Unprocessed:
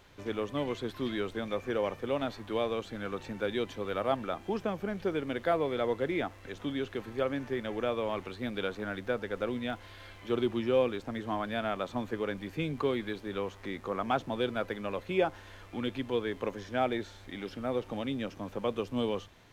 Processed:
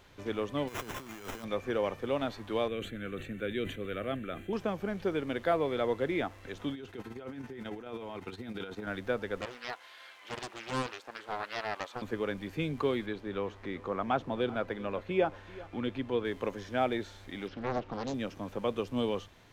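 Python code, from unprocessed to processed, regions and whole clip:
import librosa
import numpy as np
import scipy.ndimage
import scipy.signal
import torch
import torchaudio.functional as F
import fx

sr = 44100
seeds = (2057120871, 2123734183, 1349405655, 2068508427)

y = fx.envelope_flatten(x, sr, power=0.6, at=(0.67, 1.43), fade=0.02)
y = fx.over_compress(y, sr, threshold_db=-44.0, ratio=-1.0, at=(0.67, 1.43), fade=0.02)
y = fx.sample_hold(y, sr, seeds[0], rate_hz=4500.0, jitter_pct=0, at=(0.67, 1.43), fade=0.02)
y = fx.chain(y, sr, fx.fixed_phaser(hz=2200.0, stages=4),
    fx.sustainer(db_per_s=98.0), at=(2.68, 4.53))
y = fx.chain(y, sr, fx.tremolo(hz=18.0, depth=0.7),
    fx.notch_comb(f0_hz=570.0),
    fx.over_compress(threshold_db=-41.0, ratio=-1.0), at=(6.73, 8.87))
y = fx.chain(y, sr, fx.highpass(hz=780.0, slope=12),
    fx.doppler_dist(depth_ms=0.96), at=(9.41, 12.02))
y = fx.chain(y, sr, fx.lowpass(hz=2900.0, slope=6),
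    fx.echo_single(ms=387, db=-19.0), at=(13.06, 16.25))
y = fx.chain(y, sr, fx.air_absorb(metres=150.0),
    fx.doppler_dist(depth_ms=0.88), at=(17.48, 18.14))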